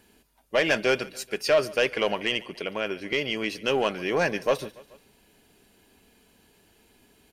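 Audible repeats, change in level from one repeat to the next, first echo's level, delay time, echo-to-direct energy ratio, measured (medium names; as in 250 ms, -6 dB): 3, -4.5 dB, -21.0 dB, 143 ms, -19.5 dB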